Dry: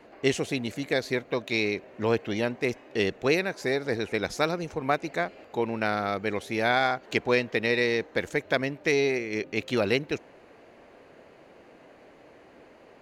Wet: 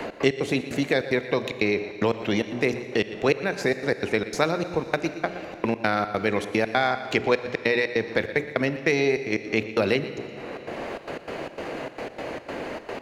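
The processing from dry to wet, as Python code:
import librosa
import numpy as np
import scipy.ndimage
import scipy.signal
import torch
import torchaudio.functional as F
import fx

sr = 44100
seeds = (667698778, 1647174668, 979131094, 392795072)

p1 = fx.high_shelf(x, sr, hz=5100.0, db=-5.0)
p2 = fx.hum_notches(p1, sr, base_hz=60, count=7)
p3 = fx.level_steps(p2, sr, step_db=11)
p4 = p2 + (p3 * 10.0 ** (0.0 / 20.0))
p5 = fx.step_gate(p4, sr, bpm=149, pattern='x.x.xx.xx', floor_db=-60.0, edge_ms=4.5)
p6 = p5 + fx.echo_single(p5, sr, ms=118, db=-16.5, dry=0)
p7 = fx.rev_schroeder(p6, sr, rt60_s=1.6, comb_ms=28, drr_db=13.0)
p8 = fx.band_squash(p7, sr, depth_pct=70)
y = p8 * 10.0 ** (1.0 / 20.0)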